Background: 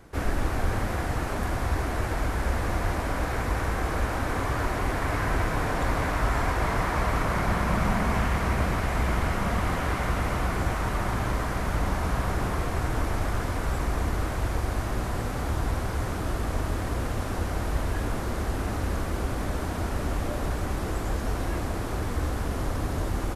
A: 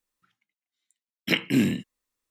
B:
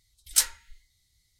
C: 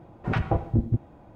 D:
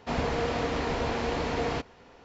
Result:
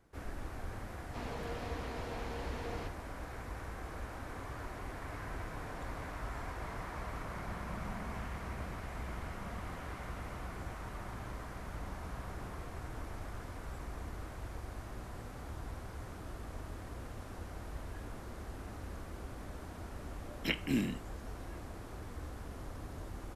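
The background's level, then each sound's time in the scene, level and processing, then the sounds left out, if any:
background -16.5 dB
1.07 add D -14 dB
19.17 add A -10.5 dB
not used: B, C

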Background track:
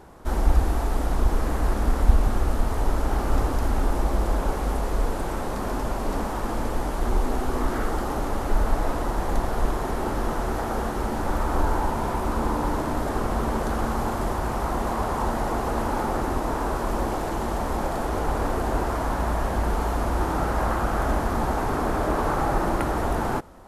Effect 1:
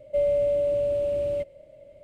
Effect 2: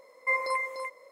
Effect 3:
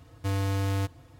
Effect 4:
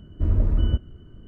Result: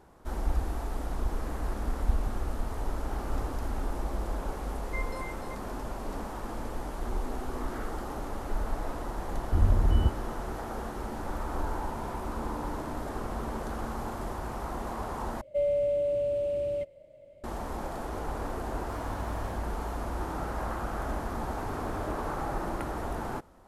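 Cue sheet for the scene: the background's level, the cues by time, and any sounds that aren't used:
background track -9.5 dB
4.66 add 2 -12 dB
9.32 add 4 -3 dB
15.41 replace with 1 -4 dB
18.65 add 3 -16 dB + spectral trails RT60 0.34 s
21.26 add 3 -7 dB + compressor 4:1, threshold -41 dBFS

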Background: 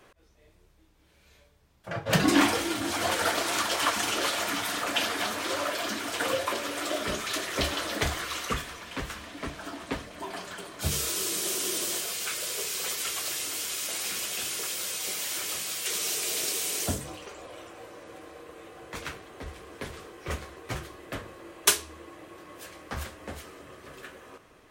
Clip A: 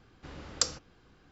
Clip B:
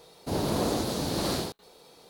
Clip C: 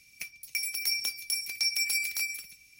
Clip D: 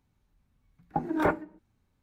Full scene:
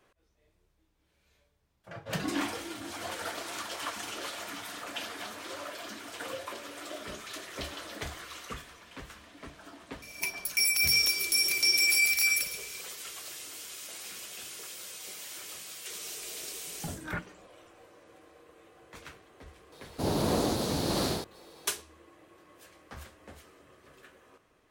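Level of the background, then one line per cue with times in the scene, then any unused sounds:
background -10.5 dB
10.02 add C -15 dB + maximiser +26 dB
15.88 add D -3 dB + band shelf 540 Hz -15 dB 2.3 oct
19.72 add B -0.5 dB
not used: A

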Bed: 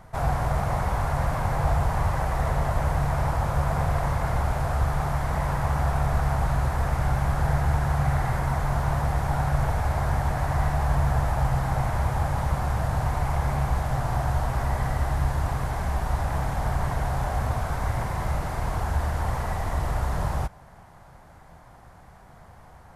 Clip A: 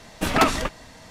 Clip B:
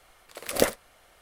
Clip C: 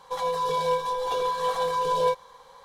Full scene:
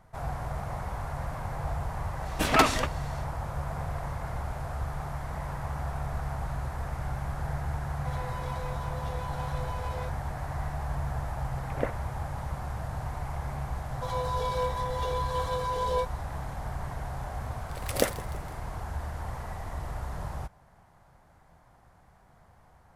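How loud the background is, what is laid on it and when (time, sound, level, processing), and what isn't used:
bed -9.5 dB
2.18 add A -2 dB, fades 0.10 s + low shelf 200 Hz -7 dB
7.95 add C -11.5 dB + soft clip -25.5 dBFS
11.21 add B -8 dB + LPF 2200 Hz 24 dB/oct
13.91 add C -5.5 dB
17.4 add B -3.5 dB + frequency-shifting echo 0.162 s, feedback 53%, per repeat -52 Hz, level -18 dB

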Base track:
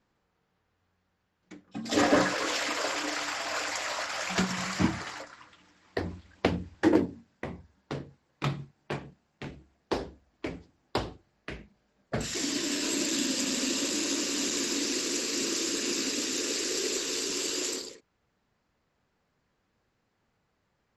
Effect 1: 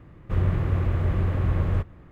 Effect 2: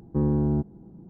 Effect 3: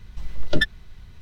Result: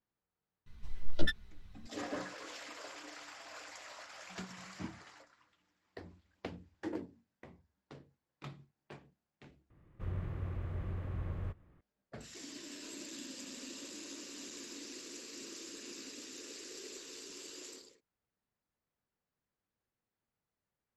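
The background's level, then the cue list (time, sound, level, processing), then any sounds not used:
base track -17.5 dB
0.66 add 3 -8.5 dB + ensemble effect
9.7 replace with 1 -16 dB
not used: 2

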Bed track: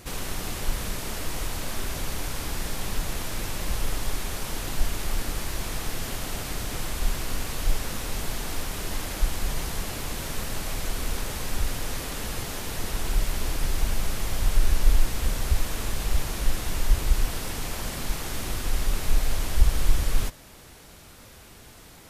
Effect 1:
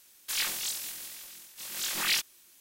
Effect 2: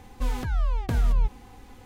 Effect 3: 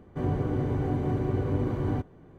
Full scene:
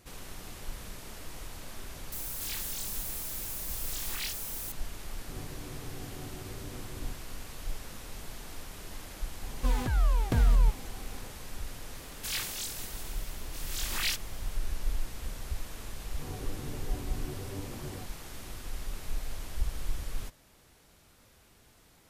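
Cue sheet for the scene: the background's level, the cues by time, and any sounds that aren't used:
bed track -12.5 dB
2.12 add 1 -11 dB + switching spikes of -25 dBFS
5.12 add 3 -17.5 dB
9.43 add 2 -0.5 dB
11.95 add 1 -4 dB
16.03 add 3 -10 dB + ensemble effect

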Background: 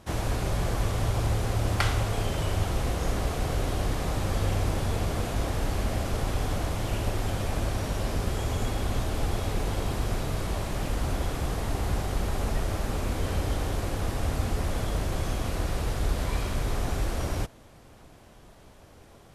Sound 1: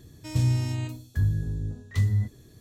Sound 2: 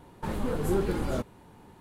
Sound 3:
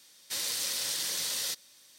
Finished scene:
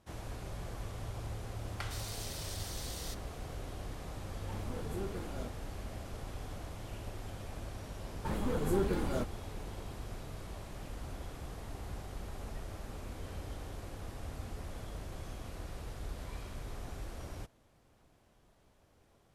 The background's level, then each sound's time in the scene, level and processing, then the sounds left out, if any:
background -15 dB
1.6 add 3 -13 dB
4.26 add 2 -13.5 dB
8.02 add 2 -4 dB
not used: 1

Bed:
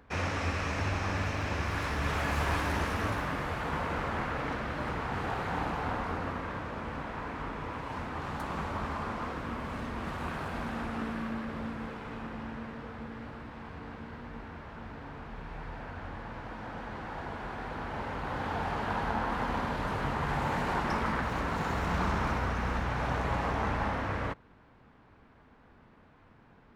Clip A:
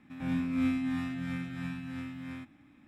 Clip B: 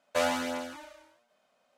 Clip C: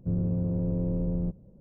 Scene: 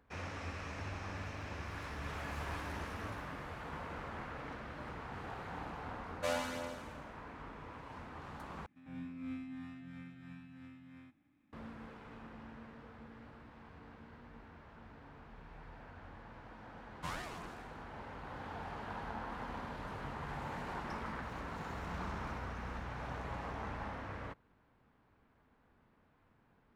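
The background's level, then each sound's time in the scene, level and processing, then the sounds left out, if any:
bed -11.5 dB
6.08 add B -8.5 dB + doubler 49 ms -12 dB
8.66 replace with A -14 dB + high shelf 6100 Hz -9 dB
16.88 add B -12 dB + ring modulator with a swept carrier 710 Hz, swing 40%, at 2.9 Hz
not used: C

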